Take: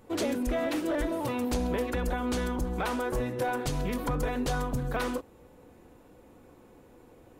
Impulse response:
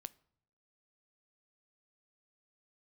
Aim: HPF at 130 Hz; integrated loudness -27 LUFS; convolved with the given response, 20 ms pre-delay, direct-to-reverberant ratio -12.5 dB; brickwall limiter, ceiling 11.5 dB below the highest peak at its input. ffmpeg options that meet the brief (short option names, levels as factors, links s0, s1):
-filter_complex "[0:a]highpass=130,alimiter=level_in=2.24:limit=0.0631:level=0:latency=1,volume=0.447,asplit=2[s0][s1];[1:a]atrim=start_sample=2205,adelay=20[s2];[s1][s2]afir=irnorm=-1:irlink=0,volume=7.5[s3];[s0][s3]amix=inputs=2:normalize=0,volume=0.841"